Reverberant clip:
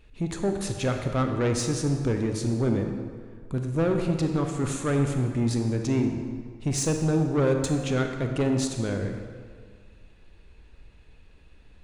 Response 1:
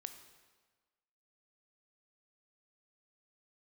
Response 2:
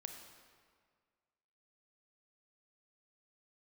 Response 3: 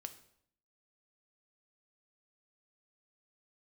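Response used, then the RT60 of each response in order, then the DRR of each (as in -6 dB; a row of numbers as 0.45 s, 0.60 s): 2; 1.4 s, 1.8 s, 0.65 s; 8.0 dB, 4.0 dB, 8.5 dB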